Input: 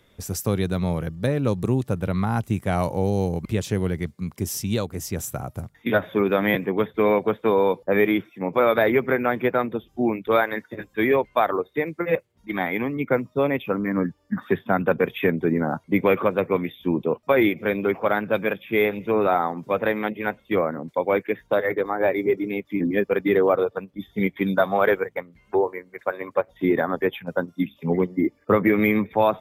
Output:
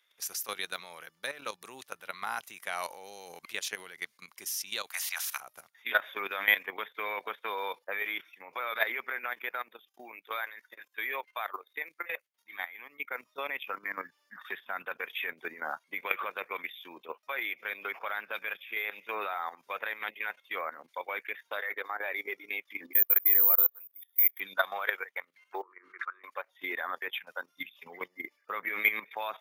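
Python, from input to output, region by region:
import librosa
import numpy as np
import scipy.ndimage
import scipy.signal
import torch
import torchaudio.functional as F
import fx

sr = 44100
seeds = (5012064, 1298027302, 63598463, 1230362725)

y = fx.spec_clip(x, sr, under_db=24, at=(4.86, 5.39), fade=0.02)
y = fx.highpass(y, sr, hz=730.0, slope=24, at=(4.86, 5.39), fade=0.02)
y = fx.chain(y, sr, fx.high_shelf(hz=11000.0, db=6.5),
    fx.level_steps(step_db=12), at=(9.26, 13.17))
y = fx.chain(y, sr, fx.high_shelf(hz=3700.0, db=-11.5),
    fx.level_steps(step_db=23),
    fx.resample_bad(factor=3, down='filtered', up='zero_stuff'), at=(22.93, 24.4))
y = fx.chain(y, sr, fx.double_bandpass(hz=650.0, octaves=1.9),
    fx.pre_swell(db_per_s=26.0), at=(25.62, 26.24))
y = scipy.signal.sosfilt(scipy.signal.butter(2, 1500.0, 'highpass', fs=sr, output='sos'), y)
y = fx.notch(y, sr, hz=7700.0, q=6.0)
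y = fx.level_steps(y, sr, step_db=13)
y = F.gain(torch.from_numpy(y), 4.5).numpy()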